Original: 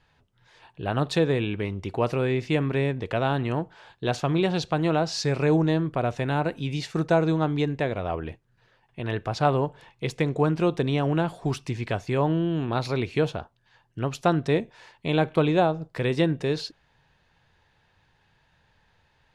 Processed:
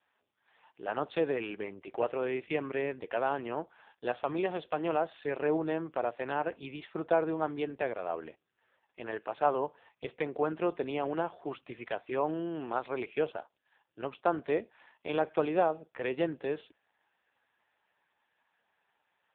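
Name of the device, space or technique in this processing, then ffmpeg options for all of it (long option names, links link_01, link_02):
telephone: -af "highpass=390,lowpass=3400,volume=-3.5dB" -ar 8000 -c:a libopencore_amrnb -b:a 5150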